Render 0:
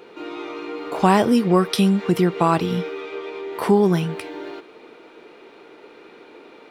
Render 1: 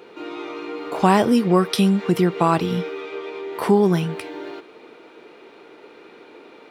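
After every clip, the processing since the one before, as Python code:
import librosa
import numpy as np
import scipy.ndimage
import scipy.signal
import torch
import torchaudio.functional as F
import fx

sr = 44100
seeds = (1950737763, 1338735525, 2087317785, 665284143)

y = scipy.signal.sosfilt(scipy.signal.butter(2, 42.0, 'highpass', fs=sr, output='sos'), x)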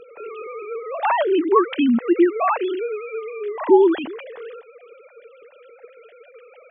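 y = fx.sine_speech(x, sr)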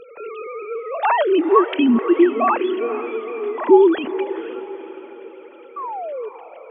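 y = fx.spec_paint(x, sr, seeds[0], shape='fall', start_s=5.76, length_s=0.53, low_hz=410.0, high_hz=1200.0, level_db=-30.0)
y = fx.echo_diffused(y, sr, ms=476, feedback_pct=47, wet_db=-13.0)
y = y * librosa.db_to_amplitude(2.0)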